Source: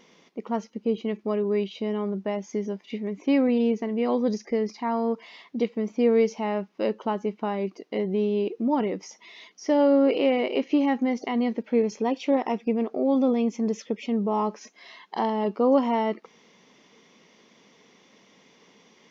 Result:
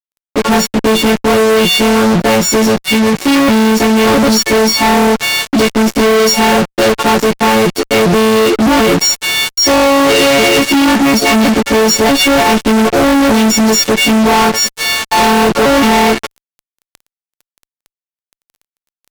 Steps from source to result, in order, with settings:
every partial snapped to a pitch grid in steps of 4 semitones
fuzz pedal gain 45 dB, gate −41 dBFS
level +5.5 dB

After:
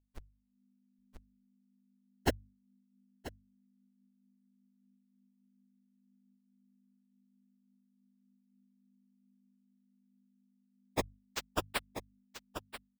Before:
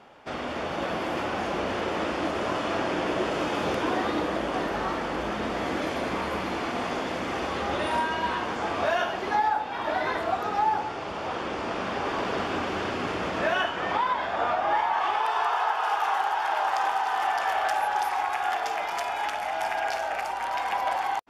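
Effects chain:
brickwall limiter −19.5 dBFS, peak gain reduction 6 dB
tilt shelving filter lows −7.5 dB
harmonic generator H 4 −10 dB, 7 −41 dB, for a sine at −13 dBFS
comparator with hysteresis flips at −24.5 dBFS
time stretch by phase vocoder 0.61×
mains hum 50 Hz, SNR 12 dB
parametric band 160 Hz −7.5 dB 0.71 octaves
mains-hum notches 50/100/150 Hz
automatic gain control gain up to 14 dB
on a send: single-tap delay 985 ms −10.5 dB
on the sum: amplitude modulation by smooth noise, depth 55%
level +8 dB

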